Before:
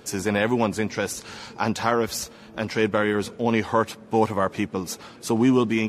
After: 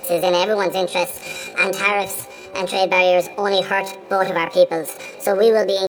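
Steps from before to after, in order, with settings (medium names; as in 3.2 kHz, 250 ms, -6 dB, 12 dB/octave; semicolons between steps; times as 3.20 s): in parallel at -0.5 dB: compression, threshold -31 dBFS, peak gain reduction 15.5 dB; on the sum: pitch shift +9.5 st; de-hum 193.2 Hz, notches 19; small resonant body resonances 530/2400/3900 Hz, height 16 dB, ringing for 75 ms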